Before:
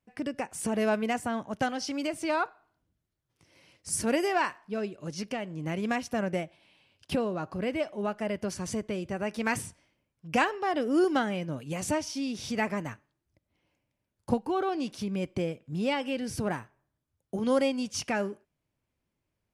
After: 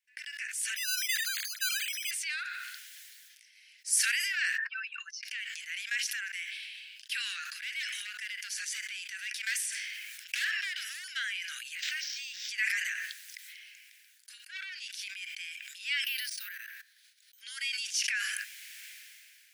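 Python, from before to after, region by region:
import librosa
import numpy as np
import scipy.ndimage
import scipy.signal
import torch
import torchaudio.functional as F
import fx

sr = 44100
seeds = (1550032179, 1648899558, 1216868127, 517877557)

y = fx.chain(x, sr, fx.sine_speech(),
    fx.resample_bad(factor=8, down='none', up='hold'), at=(0.76, 2.11))
y = fx.chain(y, sr, fx.spec_expand(power=2.3),
    fx.highpass(hz=120.0, slope=12),
    fx.pre_swell(db_per_s=23.0), at=(4.58, 5.23))
y = fx.chain(y, sr, fx.clip_hard(threshold_db=-26.0),
    fx.band_squash(depth_pct=40), at=(7.45, 11.04))
y = fx.chain(y, sr, fx.high_shelf(hz=12000.0, db=8.5),
    fx.resample_linear(factor=4), at=(11.75, 12.49))
y = fx.chain(y, sr, fx.highpass(hz=660.0, slope=12),
    fx.transformer_sat(knee_hz=1700.0), at=(14.44, 15.02))
y = fx.chain(y, sr, fx.level_steps(step_db=19),
    fx.peak_eq(hz=4200.0, db=6.5, octaves=0.4),
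    fx.resample_bad(factor=3, down='filtered', up='hold'), at=(16.04, 17.41))
y = scipy.signal.sosfilt(scipy.signal.butter(12, 1600.0, 'highpass', fs=sr, output='sos'), y)
y = fx.sustainer(y, sr, db_per_s=23.0)
y = y * librosa.db_to_amplitude(3.0)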